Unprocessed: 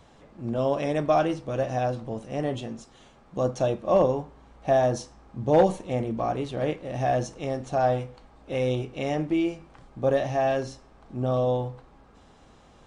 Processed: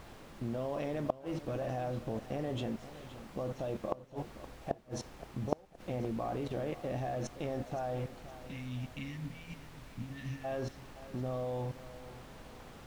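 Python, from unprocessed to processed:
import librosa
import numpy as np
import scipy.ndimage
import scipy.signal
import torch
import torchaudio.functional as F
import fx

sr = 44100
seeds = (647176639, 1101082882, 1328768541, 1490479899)

p1 = fx.level_steps(x, sr, step_db=19)
p2 = fx.spec_erase(p1, sr, start_s=8.48, length_s=1.96, low_hz=280.0, high_hz=1700.0)
p3 = fx.dmg_noise_colour(p2, sr, seeds[0], colour='pink', level_db=-54.0)
p4 = fx.high_shelf(p3, sr, hz=4800.0, db=-11.0)
p5 = fx.gate_flip(p4, sr, shuts_db=-19.0, range_db=-40)
p6 = p5 + fx.echo_feedback(p5, sr, ms=520, feedback_pct=41, wet_db=-15.0, dry=0)
y = p6 * librosa.db_to_amplitude(2.0)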